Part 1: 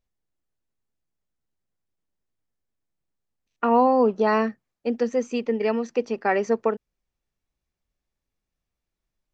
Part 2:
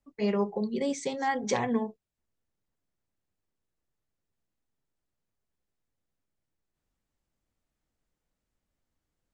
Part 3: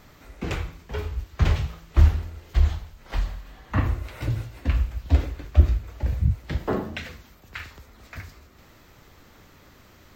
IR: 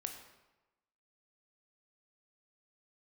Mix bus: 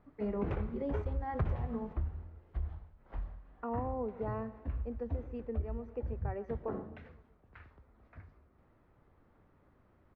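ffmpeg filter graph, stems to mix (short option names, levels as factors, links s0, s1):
-filter_complex "[0:a]volume=0.168,asplit=2[s0][s1];[s1]volume=0.112[s2];[1:a]volume=0.422,asplit=3[s3][s4][s5];[s4]volume=0.473[s6];[2:a]volume=1.12[s7];[s5]apad=whole_len=447756[s8];[s7][s8]sidechaingate=range=0.2:threshold=0.00562:ratio=16:detection=peak[s9];[3:a]atrim=start_sample=2205[s10];[s6][s10]afir=irnorm=-1:irlink=0[s11];[s2]aecho=0:1:129|258|387|516|645|774|903|1032|1161:1|0.57|0.325|0.185|0.106|0.0602|0.0343|0.0195|0.0111[s12];[s0][s3][s9][s11][s12]amix=inputs=5:normalize=0,lowpass=1200,acompressor=threshold=0.0251:ratio=4"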